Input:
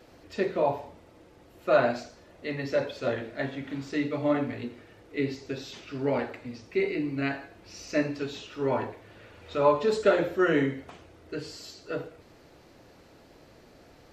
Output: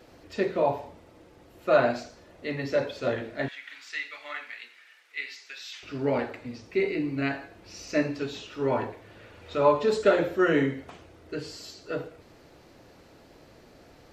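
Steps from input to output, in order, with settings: 3.48–5.83 s: resonant high-pass 1.9 kHz, resonance Q 1.5; trim +1 dB

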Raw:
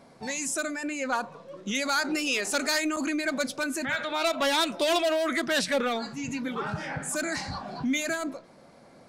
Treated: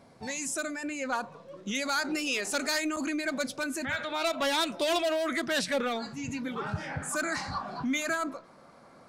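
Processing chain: peaking EQ 89 Hz +9.5 dB 0.68 oct, from 7.02 s 1.2 kHz; trim -3 dB

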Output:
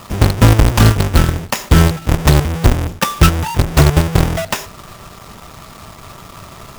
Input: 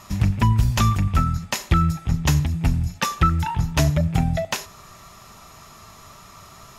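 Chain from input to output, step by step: square wave that keeps the level; band-stop 4.2 kHz, Q 9.6; in parallel at -9 dB: companded quantiser 2-bit; on the sum: trim -1 dB

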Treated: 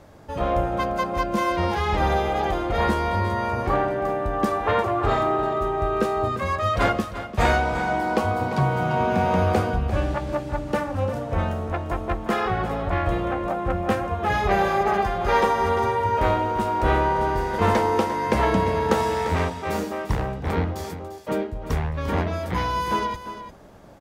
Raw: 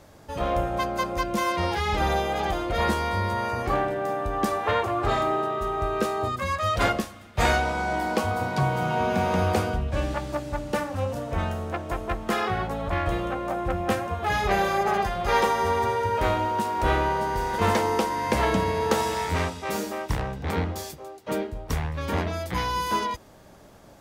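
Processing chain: treble shelf 3 kHz -8.5 dB; delay 347 ms -12 dB; trim +3 dB

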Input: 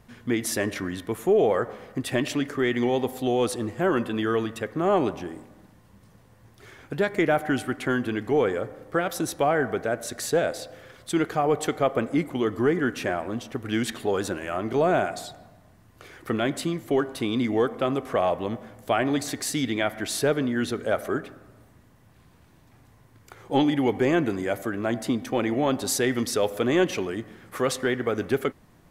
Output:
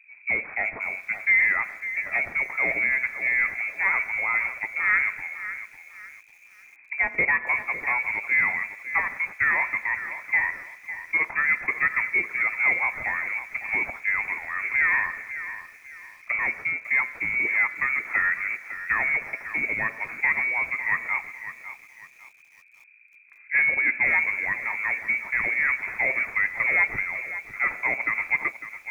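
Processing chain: CVSD coder 32 kbps; level-controlled noise filter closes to 390 Hz, open at -19 dBFS; frequency inversion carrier 2.5 kHz; bit-crushed delay 552 ms, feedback 35%, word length 8-bit, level -12 dB

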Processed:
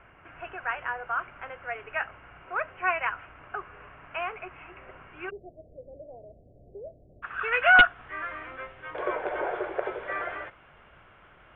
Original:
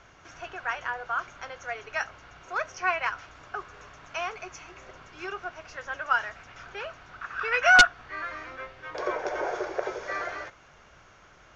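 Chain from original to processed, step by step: steep low-pass 2.9 kHz 72 dB/octave, from 5.29 s 640 Hz, from 7.22 s 3.3 kHz

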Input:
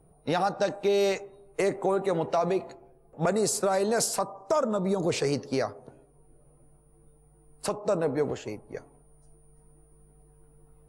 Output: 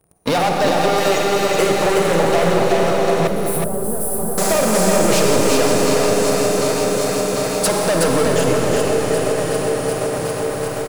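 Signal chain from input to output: backward echo that repeats 374 ms, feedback 78%, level -14 dB; high-pass 43 Hz 24 dB/octave; treble shelf 9.3 kHz +9.5 dB; waveshaping leveller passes 5; hum notches 50/100/150/200/250/300/350/400 Hz; reverberation RT60 5.0 s, pre-delay 41 ms, DRR 0.5 dB; compression 2:1, threshold -27 dBFS, peak gain reduction 10 dB; 3.27–4.38 s: FFT filter 100 Hz 0 dB, 1.3 kHz -14 dB, 2.2 kHz -27 dB, 6.8 kHz -27 dB, 10 kHz -2 dB; delay 369 ms -4.5 dB; trim +6 dB

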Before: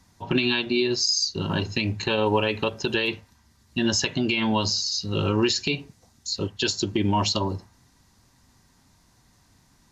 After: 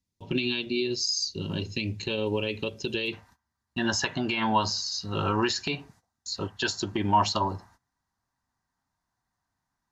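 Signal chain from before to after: gate -51 dBFS, range -20 dB; high-order bell 1.1 kHz -9.5 dB, from 3.12 s +9 dB; trim -5 dB

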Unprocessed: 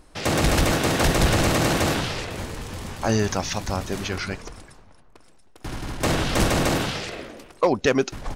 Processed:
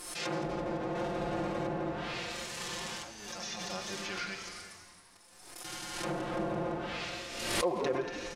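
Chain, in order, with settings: 6.09–6.71 s: jump at every zero crossing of -29 dBFS; gated-style reverb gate 440 ms flat, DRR 10.5 dB; 2.60–3.70 s: compressor with a negative ratio -32 dBFS, ratio -1; RIAA curve recording; low-pass that closes with the level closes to 730 Hz, closed at -15.5 dBFS; comb 5.7 ms, depth 86%; frequency-shifting echo 169 ms, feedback 61%, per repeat -95 Hz, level -12.5 dB; harmonic-percussive split percussive -15 dB; 0.95–1.67 s: treble shelf 2.6 kHz +9 dB; swell ahead of each attack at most 47 dB/s; trim -7 dB

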